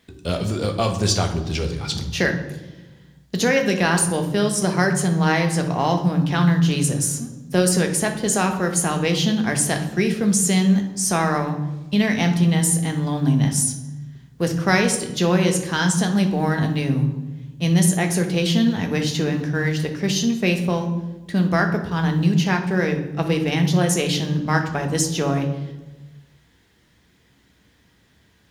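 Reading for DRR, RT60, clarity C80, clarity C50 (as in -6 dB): 4.0 dB, 1.2 s, 11.5 dB, 8.5 dB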